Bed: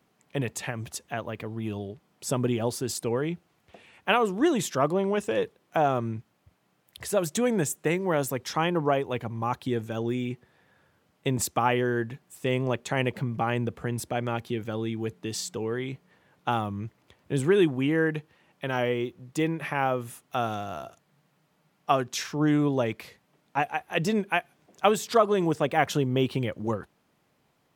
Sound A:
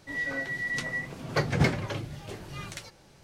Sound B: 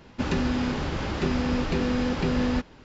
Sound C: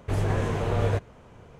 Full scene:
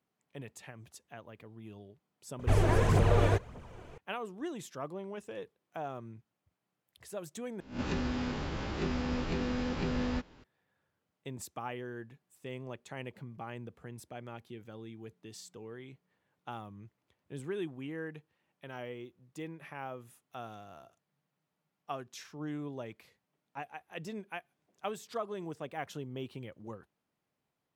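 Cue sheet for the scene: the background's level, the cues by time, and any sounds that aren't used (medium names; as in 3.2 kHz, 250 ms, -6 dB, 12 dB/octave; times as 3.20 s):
bed -16 dB
2.39 s: add C -1 dB + phaser 1.7 Hz, delay 3.5 ms, feedback 53%
7.60 s: replace with B -9 dB + reverse spectral sustain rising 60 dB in 0.36 s
not used: A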